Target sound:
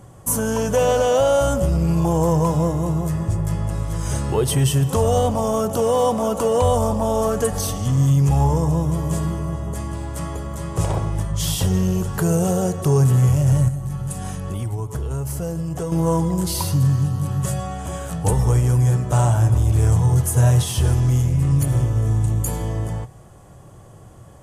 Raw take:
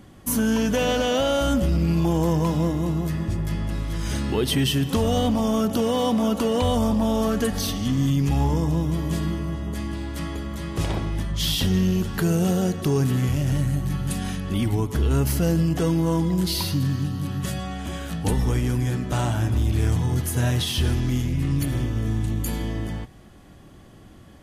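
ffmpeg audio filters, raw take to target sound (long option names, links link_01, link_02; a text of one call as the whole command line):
ffmpeg -i in.wav -filter_complex "[0:a]equalizer=frequency=125:width_type=o:width=1:gain=10,equalizer=frequency=250:width_type=o:width=1:gain=-9,equalizer=frequency=500:width_type=o:width=1:gain=7,equalizer=frequency=1000:width_type=o:width=1:gain=6,equalizer=frequency=2000:width_type=o:width=1:gain=-4,equalizer=frequency=4000:width_type=o:width=1:gain=-7,equalizer=frequency=8000:width_type=o:width=1:gain=10,asettb=1/sr,asplit=3[link_01][link_02][link_03];[link_01]atrim=end=13.684[link_04];[link_02]atrim=start=13.68:end=15.92,asetpts=PTS-STARTPTS,afade=type=in:duration=0.004:curve=qsin,afade=type=out:start_time=2.236:duration=0.004:curve=qsin,acompressor=threshold=-24dB:ratio=4[link_05];[link_03]atrim=start=15.916[link_06];[link_04][link_05]acrossfade=duration=0.004:curve1=hsin:curve2=qsin[link_07];[link_07][link_06]acrossfade=duration=0.004:curve1=qsin:curve2=hsin" out.wav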